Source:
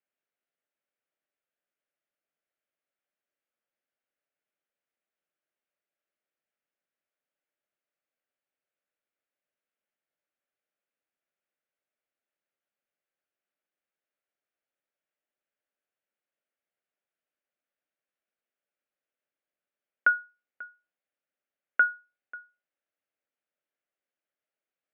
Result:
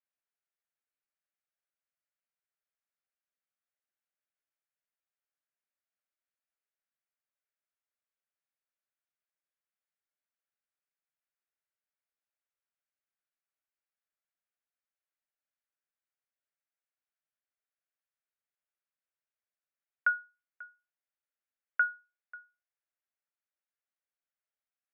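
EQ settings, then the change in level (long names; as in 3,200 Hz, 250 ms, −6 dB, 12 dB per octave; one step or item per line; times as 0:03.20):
Bessel high-pass filter 1,200 Hz, order 2
high-frequency loss of the air 480 metres
0.0 dB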